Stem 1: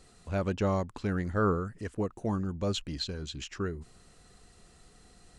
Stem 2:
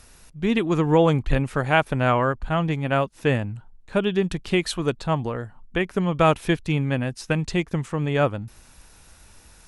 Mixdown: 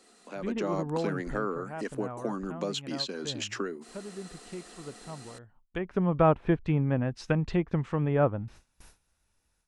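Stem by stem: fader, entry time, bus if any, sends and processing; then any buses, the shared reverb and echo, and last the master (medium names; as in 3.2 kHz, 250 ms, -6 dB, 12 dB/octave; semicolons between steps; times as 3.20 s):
+0.5 dB, 0.00 s, no send, steep high-pass 210 Hz 48 dB/octave; compression 3:1, threshold -44 dBFS, peak gain reduction 16 dB
-13.5 dB, 0.00 s, no send, low-pass that closes with the level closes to 1.2 kHz, closed at -19 dBFS; gate with hold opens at -37 dBFS; auto duck -16 dB, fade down 1.45 s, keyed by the first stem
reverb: none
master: level rider gain up to 10.5 dB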